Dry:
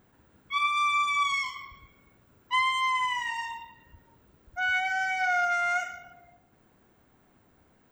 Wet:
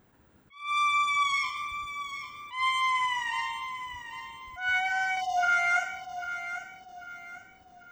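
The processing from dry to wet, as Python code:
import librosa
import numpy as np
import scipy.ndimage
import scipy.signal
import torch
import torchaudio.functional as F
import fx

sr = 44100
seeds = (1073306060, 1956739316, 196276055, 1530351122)

y = fx.spec_erase(x, sr, start_s=5.16, length_s=0.27, low_hz=860.0, high_hz=2700.0)
y = fx.doubler(y, sr, ms=49.0, db=-2.5, at=(5.12, 5.79))
y = fx.echo_feedback(y, sr, ms=794, feedback_pct=38, wet_db=-10.5)
y = fx.attack_slew(y, sr, db_per_s=140.0)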